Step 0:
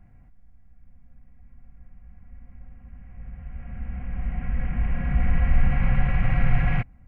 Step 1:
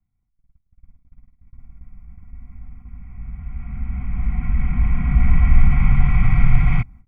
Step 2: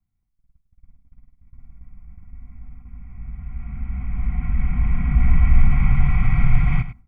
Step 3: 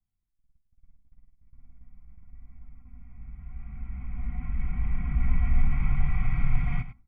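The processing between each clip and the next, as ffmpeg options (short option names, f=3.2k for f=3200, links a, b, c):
-filter_complex "[0:a]aecho=1:1:0.9:0.89,acrossover=split=120|3000[a][b][c];[b]acompressor=threshold=-23dB:ratio=6[d];[a][d][c]amix=inputs=3:normalize=0,agate=range=-29dB:threshold=-39dB:ratio=16:detection=peak,volume=1.5dB"
-af "aecho=1:1:100:0.224,volume=-2dB"
-af "flanger=delay=2.5:depth=1.7:regen=73:speed=0.82:shape=sinusoidal,volume=-4.5dB"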